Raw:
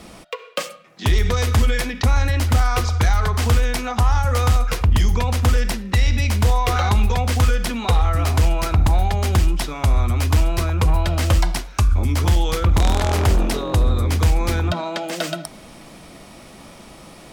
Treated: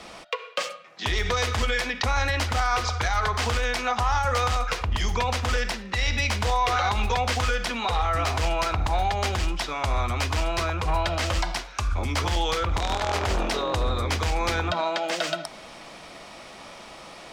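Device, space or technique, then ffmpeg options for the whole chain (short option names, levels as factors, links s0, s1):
DJ mixer with the lows and highs turned down: -filter_complex "[0:a]acrossover=split=470 7100:gain=0.251 1 0.178[s0][s1][s2];[s0][s1][s2]amix=inputs=3:normalize=0,alimiter=limit=0.15:level=0:latency=1:release=80,volume=1.33"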